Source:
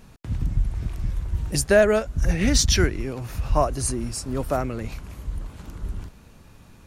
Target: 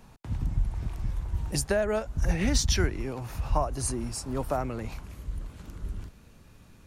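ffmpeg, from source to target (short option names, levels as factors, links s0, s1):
-filter_complex "[0:a]asetnsamples=n=441:p=0,asendcmd='5.05 equalizer g -3',equalizer=f=870:t=o:w=0.69:g=6.5,acrossover=split=140[s0][s1];[s1]acompressor=threshold=0.1:ratio=4[s2];[s0][s2]amix=inputs=2:normalize=0,volume=0.596"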